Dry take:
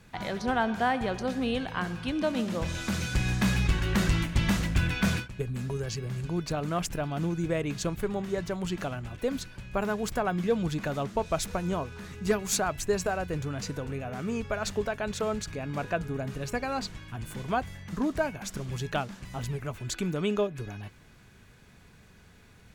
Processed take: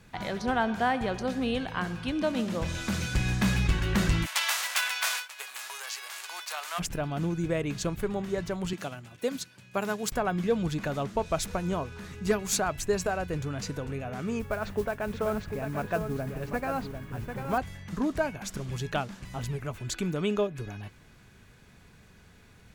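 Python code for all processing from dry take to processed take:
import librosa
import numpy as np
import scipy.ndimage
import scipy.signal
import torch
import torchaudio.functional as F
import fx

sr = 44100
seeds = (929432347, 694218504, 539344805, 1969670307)

y = fx.envelope_flatten(x, sr, power=0.6, at=(4.25, 6.78), fade=0.02)
y = fx.highpass(y, sr, hz=800.0, slope=24, at=(4.25, 6.78), fade=0.02)
y = fx.chain(y, sr, fx.highpass(hz=110.0, slope=24),
    fx.high_shelf(hz=3000.0, db=8.5),
    fx.upward_expand(threshold_db=-42.0, expansion=1.5), at=(8.73, 10.12))
y = fx.chain(y, sr, fx.lowpass(hz=2200.0, slope=12),
    fx.mod_noise(seeds[0], snr_db=23),
    fx.echo_single(ms=746, db=-7.5), at=(14.39, 17.58))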